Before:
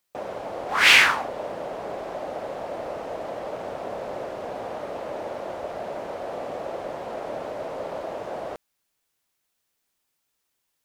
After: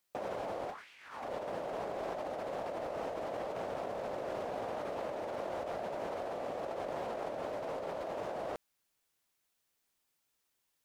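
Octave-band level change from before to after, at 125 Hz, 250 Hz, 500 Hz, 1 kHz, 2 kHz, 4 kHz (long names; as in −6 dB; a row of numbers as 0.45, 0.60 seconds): −6.5, −6.5, −6.5, −9.0, −24.5, −26.5 decibels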